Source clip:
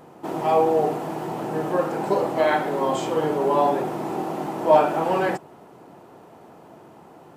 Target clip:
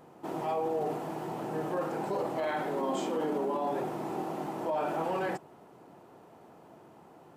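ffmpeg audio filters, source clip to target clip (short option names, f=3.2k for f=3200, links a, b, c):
-filter_complex "[0:a]asettb=1/sr,asplit=3[a][b][c];[a]atrim=end=2.764[d];[b]atrim=start=2.76:end=3.68,asetpts=PTS-STARTPTS,afade=t=in:d=0.004:c=qsin,afade=t=out:st=0.916:d=0.004:c=qsin,lowshelf=f=150:t=q:w=3:g=-12.5[e];[c]atrim=start=3.676[f];[d][e]acrossfade=d=0.004:c1=hsin:c2=qsin[g];[g][f]acrossfade=d=0.004:c1=qsin:c2=hsin,alimiter=limit=-16.5dB:level=0:latency=1:release=13,volume=-7.5dB"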